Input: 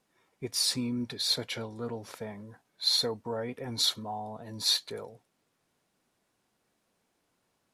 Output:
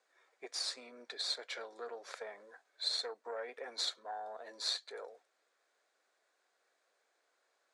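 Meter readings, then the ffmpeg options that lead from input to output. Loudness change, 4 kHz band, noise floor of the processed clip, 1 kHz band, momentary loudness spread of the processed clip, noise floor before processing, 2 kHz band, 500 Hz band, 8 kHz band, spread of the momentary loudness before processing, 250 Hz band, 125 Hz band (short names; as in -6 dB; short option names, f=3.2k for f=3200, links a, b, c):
-10.0 dB, -9.0 dB, -79 dBFS, -5.0 dB, 13 LU, -77 dBFS, -3.0 dB, -7.5 dB, -11.0 dB, 16 LU, -24.5 dB, under -40 dB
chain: -af "aeval=exprs='0.224*(cos(1*acos(clip(val(0)/0.224,-1,1)))-cos(1*PI/2))+0.0316*(cos(3*acos(clip(val(0)/0.224,-1,1)))-cos(3*PI/2))+0.0141*(cos(6*acos(clip(val(0)/0.224,-1,1)))-cos(6*PI/2))':c=same,acompressor=threshold=-45dB:ratio=2,highpass=f=470:w=0.5412,highpass=f=470:w=1.3066,equalizer=f=920:t=q:w=4:g=-6,equalizer=f=1.6k:t=q:w=4:g=4,equalizer=f=2.9k:t=q:w=4:g=-7,equalizer=f=5.5k:t=q:w=4:g=-5,lowpass=f=7.6k:w=0.5412,lowpass=f=7.6k:w=1.3066,volume=6dB"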